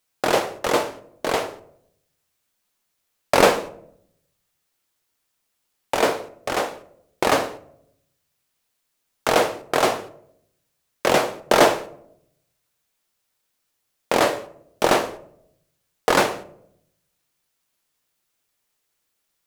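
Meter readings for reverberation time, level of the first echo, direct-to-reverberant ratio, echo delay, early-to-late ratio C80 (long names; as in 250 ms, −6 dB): 0.75 s, no echo audible, 9.5 dB, no echo audible, 19.5 dB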